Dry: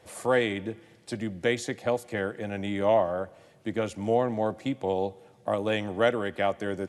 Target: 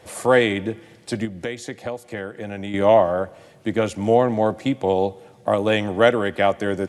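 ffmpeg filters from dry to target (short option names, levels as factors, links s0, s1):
-filter_complex "[0:a]asettb=1/sr,asplit=3[s0][s1][s2];[s0]atrim=end=1.254[s3];[s1]atrim=start=1.25:end=2.74,asetpts=PTS-STARTPTS,afade=t=in:d=0.004:c=qsin,afade=t=out:st=1.486:d=0.004:c=qsin,acompressor=threshold=0.0141:ratio=3[s4];[s2]atrim=start=2.736[s5];[s3][s4]acrossfade=d=0.004:c1=hsin:c2=qsin[s6];[s6][s5]acrossfade=d=0.004:c1=qsin:c2=hsin,volume=2.51"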